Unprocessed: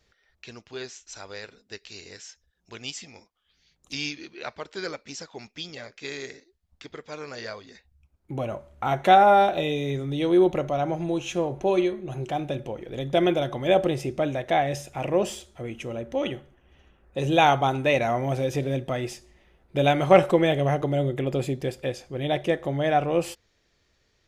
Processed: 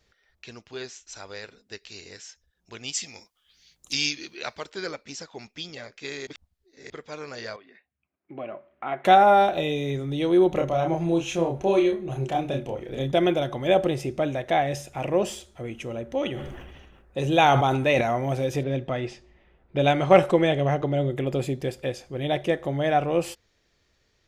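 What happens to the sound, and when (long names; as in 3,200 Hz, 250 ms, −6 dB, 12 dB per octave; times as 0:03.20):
0:02.93–0:04.69: high-shelf EQ 2,400 Hz → 3,900 Hz +11.5 dB
0:06.27–0:06.90: reverse
0:07.56–0:09.05: loudspeaker in its box 340–2,600 Hz, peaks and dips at 490 Hz −8 dB, 880 Hz −9 dB, 1,400 Hz −4 dB
0:10.49–0:13.12: double-tracking delay 30 ms −3 dB
0:16.29–0:18.01: level that may fall only so fast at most 36 dB per second
0:18.63–0:21.10: low-pass that shuts in the quiet parts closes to 2,900 Hz, open at −12.5 dBFS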